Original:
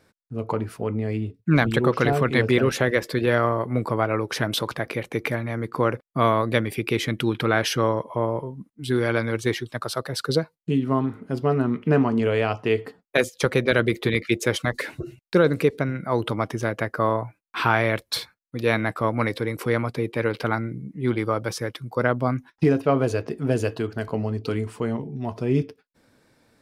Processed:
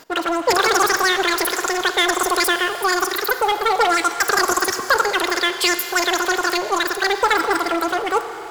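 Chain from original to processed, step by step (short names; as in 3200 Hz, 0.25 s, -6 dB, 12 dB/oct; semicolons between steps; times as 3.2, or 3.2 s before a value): wide varispeed 3.13×; Schroeder reverb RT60 2.6 s, combs from 33 ms, DRR 13.5 dB; power-law curve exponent 0.7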